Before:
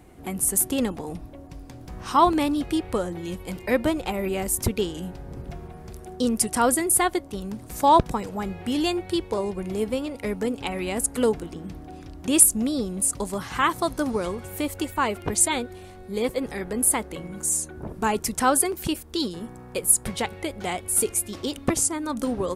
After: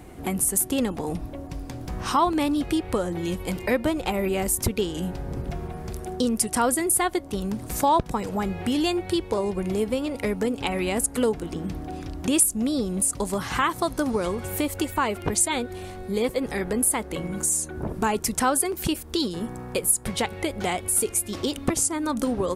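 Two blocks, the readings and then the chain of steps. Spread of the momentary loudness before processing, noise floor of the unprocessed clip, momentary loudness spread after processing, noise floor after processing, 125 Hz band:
17 LU, -43 dBFS, 10 LU, -39 dBFS, +2.5 dB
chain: compression 2:1, threshold -32 dBFS, peak gain reduction 12 dB; trim +6.5 dB

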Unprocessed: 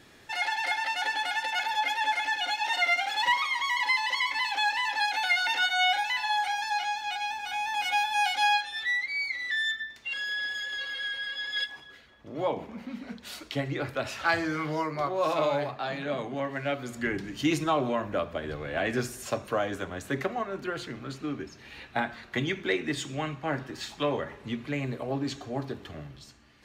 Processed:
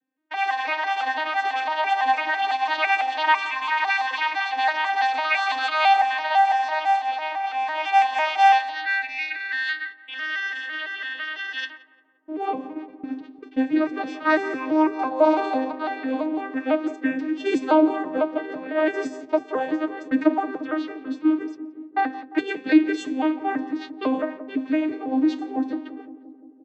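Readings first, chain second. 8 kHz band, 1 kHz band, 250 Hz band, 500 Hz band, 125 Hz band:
no reading, +8.0 dB, +11.5 dB, +6.0 dB, under -15 dB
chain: vocoder on a broken chord minor triad, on C4, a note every 167 ms; level-controlled noise filter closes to 2.7 kHz, open at -23 dBFS; gate -43 dBFS, range -32 dB; comb 6.5 ms, depth 78%; on a send: filtered feedback delay 174 ms, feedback 74%, low-pass 1 kHz, level -13.5 dB; on the sum: trim +4.5 dB

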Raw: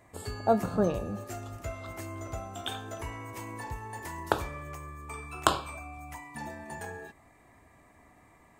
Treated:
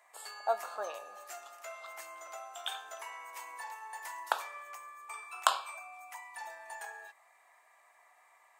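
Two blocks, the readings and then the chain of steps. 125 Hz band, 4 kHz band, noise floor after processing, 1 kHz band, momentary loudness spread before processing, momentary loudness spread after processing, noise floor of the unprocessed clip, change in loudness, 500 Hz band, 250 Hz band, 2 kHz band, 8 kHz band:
under -40 dB, -1.5 dB, -65 dBFS, -2.5 dB, 14 LU, 14 LU, -60 dBFS, -5.0 dB, -9.0 dB, under -30 dB, -1.5 dB, -1.5 dB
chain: high-pass 720 Hz 24 dB/octave; trim -1.5 dB

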